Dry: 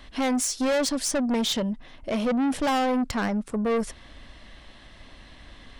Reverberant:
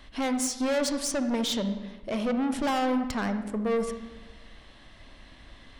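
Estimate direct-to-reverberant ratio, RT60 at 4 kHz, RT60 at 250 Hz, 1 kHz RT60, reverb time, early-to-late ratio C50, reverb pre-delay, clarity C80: 8.5 dB, 0.85 s, 1.4 s, 1.1 s, 1.2 s, 9.5 dB, 34 ms, 11.0 dB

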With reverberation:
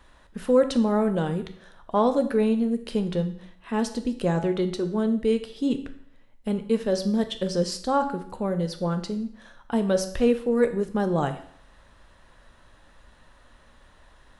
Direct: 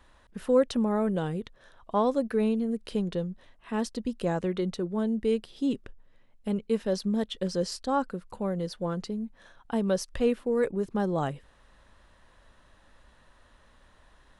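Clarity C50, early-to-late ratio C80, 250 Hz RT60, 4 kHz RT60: 12.0 dB, 15.0 dB, 0.60 s, 0.60 s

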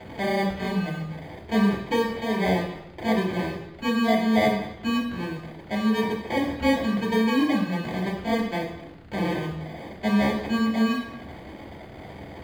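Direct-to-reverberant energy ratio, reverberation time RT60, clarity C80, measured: -4.0 dB, 0.85 s, 8.5 dB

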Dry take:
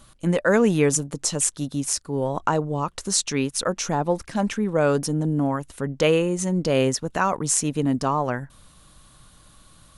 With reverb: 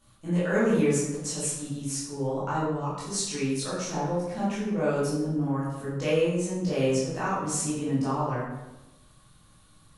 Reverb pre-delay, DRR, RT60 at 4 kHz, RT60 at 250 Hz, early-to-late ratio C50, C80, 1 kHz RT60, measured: 13 ms, -10.5 dB, 0.70 s, 1.2 s, 0.0 dB, 3.0 dB, 0.95 s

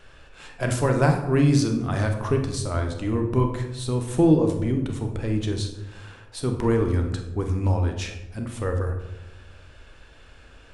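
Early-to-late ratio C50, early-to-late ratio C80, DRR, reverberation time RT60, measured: 7.0 dB, 9.5 dB, 3.5 dB, 1.0 s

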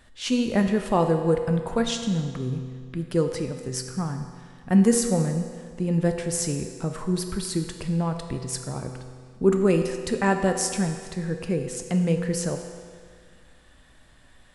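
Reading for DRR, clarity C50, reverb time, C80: 5.0 dB, 7.0 dB, 1.9 s, 8.0 dB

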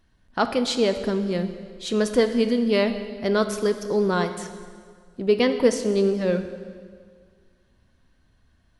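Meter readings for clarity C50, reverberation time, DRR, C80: 10.0 dB, 1.9 s, 8.0 dB, 11.0 dB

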